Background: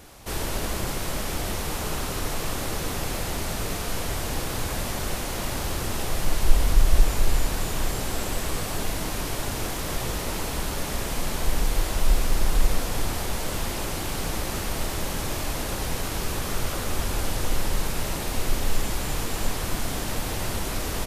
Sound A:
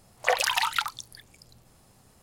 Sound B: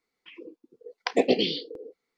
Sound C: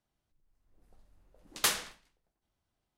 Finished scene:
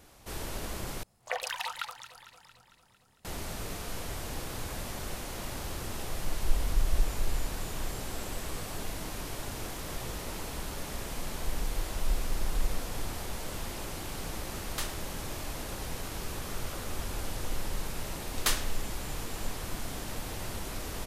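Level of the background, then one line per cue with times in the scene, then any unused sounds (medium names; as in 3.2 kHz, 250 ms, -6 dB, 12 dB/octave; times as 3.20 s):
background -9 dB
1.03 s: replace with A -10.5 dB + echo whose repeats swap between lows and highs 113 ms, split 1.2 kHz, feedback 78%, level -12 dB
13.14 s: add C -9.5 dB
16.82 s: add C -1 dB
not used: B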